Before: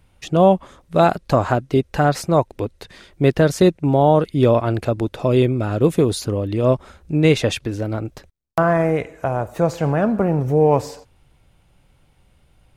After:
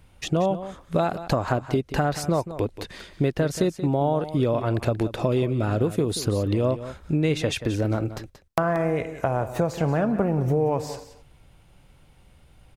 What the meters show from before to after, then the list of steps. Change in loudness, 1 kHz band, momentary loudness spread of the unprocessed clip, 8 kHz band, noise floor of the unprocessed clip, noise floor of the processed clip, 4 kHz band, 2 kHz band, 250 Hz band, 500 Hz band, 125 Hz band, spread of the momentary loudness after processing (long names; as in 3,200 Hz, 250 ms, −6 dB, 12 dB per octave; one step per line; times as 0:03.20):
−6.5 dB, −7.5 dB, 9 LU, −2.5 dB, −57 dBFS, −55 dBFS, −4.0 dB, −5.5 dB, −5.5 dB, −7.0 dB, −5.0 dB, 7 LU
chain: downward compressor, threshold −22 dBFS, peak gain reduction 13 dB
single-tap delay 181 ms −13 dB
level +2 dB